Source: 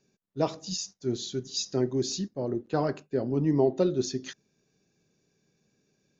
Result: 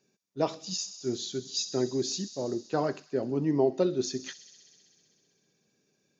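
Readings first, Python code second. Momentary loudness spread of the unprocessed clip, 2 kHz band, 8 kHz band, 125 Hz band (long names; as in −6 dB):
9 LU, 0.0 dB, can't be measured, −5.0 dB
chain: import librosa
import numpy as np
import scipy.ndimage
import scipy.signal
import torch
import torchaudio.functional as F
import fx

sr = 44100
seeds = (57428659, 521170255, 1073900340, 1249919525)

y = fx.highpass(x, sr, hz=210.0, slope=6)
y = fx.echo_wet_highpass(y, sr, ms=64, feedback_pct=83, hz=3500.0, wet_db=-12.5)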